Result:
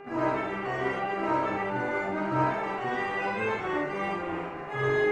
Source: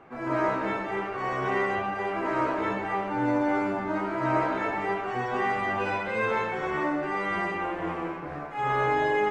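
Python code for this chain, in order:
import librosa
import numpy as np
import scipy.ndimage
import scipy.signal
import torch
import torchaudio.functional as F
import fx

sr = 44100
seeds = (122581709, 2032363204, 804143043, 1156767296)

y = fx.stretch_vocoder_free(x, sr, factor=0.55)
y = fx.dmg_buzz(y, sr, base_hz=400.0, harmonics=7, level_db=-46.0, tilt_db=-7, odd_only=False)
y = fx.room_early_taps(y, sr, ms=(46, 75), db=(-3.5, -6.5))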